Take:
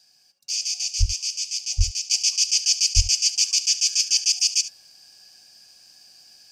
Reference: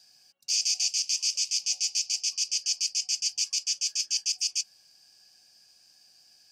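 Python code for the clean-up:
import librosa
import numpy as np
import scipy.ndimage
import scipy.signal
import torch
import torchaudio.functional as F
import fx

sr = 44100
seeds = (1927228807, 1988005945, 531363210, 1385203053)

y = fx.highpass(x, sr, hz=140.0, slope=24, at=(0.99, 1.11), fade=0.02)
y = fx.highpass(y, sr, hz=140.0, slope=24, at=(1.77, 1.89), fade=0.02)
y = fx.highpass(y, sr, hz=140.0, slope=24, at=(2.95, 3.07), fade=0.02)
y = fx.fix_echo_inverse(y, sr, delay_ms=72, level_db=-14.5)
y = fx.gain(y, sr, db=fx.steps((0.0, 0.0), (2.11, -8.0)))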